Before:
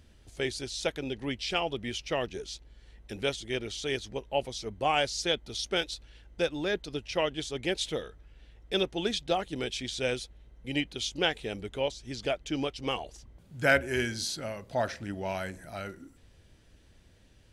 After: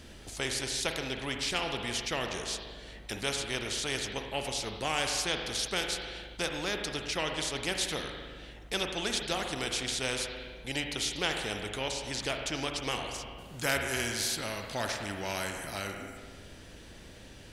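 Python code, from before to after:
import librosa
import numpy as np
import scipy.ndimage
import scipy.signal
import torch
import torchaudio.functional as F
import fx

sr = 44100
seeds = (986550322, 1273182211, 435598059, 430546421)

y = fx.rev_spring(x, sr, rt60_s=1.1, pass_ms=(38, 50), chirp_ms=55, drr_db=8.0)
y = fx.spectral_comp(y, sr, ratio=2.0)
y = y * librosa.db_to_amplitude(-3.0)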